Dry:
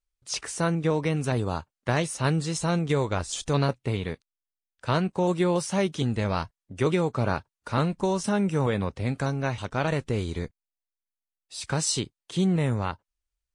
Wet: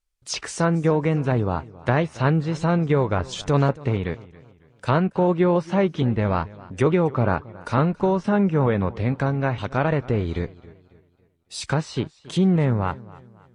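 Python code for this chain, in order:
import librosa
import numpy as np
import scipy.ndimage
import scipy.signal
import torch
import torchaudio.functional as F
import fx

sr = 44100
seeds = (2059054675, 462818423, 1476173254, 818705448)

y = fx.env_lowpass_down(x, sr, base_hz=2000.0, full_db=-23.5)
y = fx.echo_warbled(y, sr, ms=275, feedback_pct=39, rate_hz=2.8, cents=95, wet_db=-20.5)
y = y * 10.0 ** (5.0 / 20.0)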